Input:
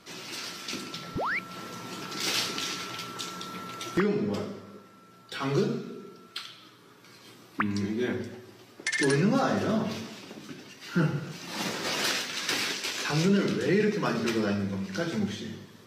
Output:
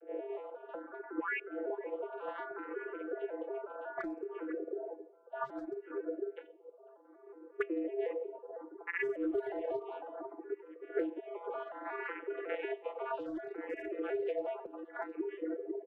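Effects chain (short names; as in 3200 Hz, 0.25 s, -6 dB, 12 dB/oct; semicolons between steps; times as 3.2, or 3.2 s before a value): arpeggiated vocoder bare fifth, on F3, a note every 0.183 s; outdoor echo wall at 86 m, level -13 dB; mistuned SSB +140 Hz 220–2800 Hz; low-pass opened by the level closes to 550 Hz, open at -27 dBFS; 11.26–11.72 comb 4.9 ms, depth 72%; in parallel at -5.5 dB: hard clip -27 dBFS, distortion -10 dB; on the sum: compressor 8:1, threshold -41 dBFS, peak gain reduction 22.5 dB; reverb removal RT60 1.2 s; endless phaser +0.64 Hz; gain +10 dB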